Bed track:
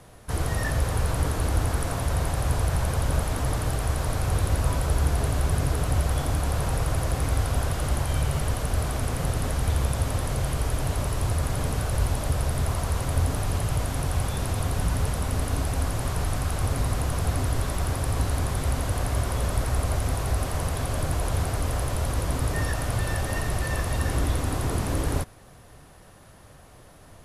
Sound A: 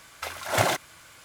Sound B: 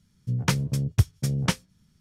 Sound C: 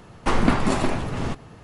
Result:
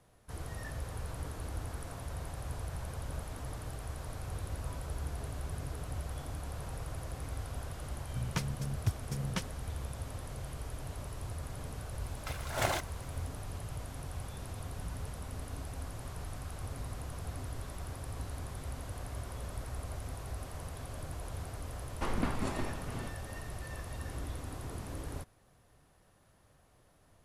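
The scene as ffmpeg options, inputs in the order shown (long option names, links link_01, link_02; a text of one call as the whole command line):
ffmpeg -i bed.wav -i cue0.wav -i cue1.wav -i cue2.wav -filter_complex "[0:a]volume=-15.5dB[link_01];[2:a]atrim=end=2,asetpts=PTS-STARTPTS,volume=-11.5dB,afade=type=in:duration=0.004:curve=hsin,afade=type=out:start_time=1.996:duration=0.004:curve=hsin,adelay=7880[link_02];[1:a]atrim=end=1.24,asetpts=PTS-STARTPTS,volume=-9dB,afade=type=in:duration=0.004:curve=hsin,afade=type=out:start_time=1.236:duration=0.004:curve=hsin,adelay=12040[link_03];[3:a]atrim=end=1.63,asetpts=PTS-STARTPTS,volume=-14.5dB,afade=type=in:duration=0.004:curve=hsin,afade=type=out:start_time=1.626:duration=0.004:curve=hsin,adelay=21750[link_04];[link_01][link_02][link_03][link_04]amix=inputs=4:normalize=0" out.wav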